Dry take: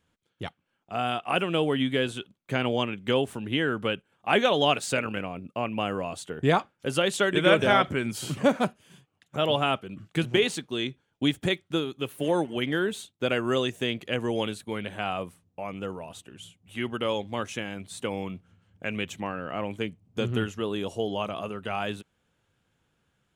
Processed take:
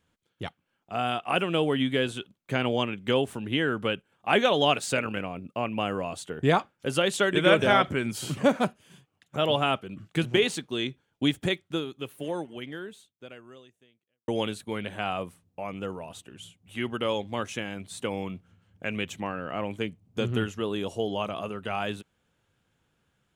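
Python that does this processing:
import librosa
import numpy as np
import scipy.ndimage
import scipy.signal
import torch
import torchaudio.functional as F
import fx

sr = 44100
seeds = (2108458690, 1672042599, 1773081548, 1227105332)

y = fx.edit(x, sr, fx.fade_out_span(start_s=11.34, length_s=2.94, curve='qua'), tone=tone)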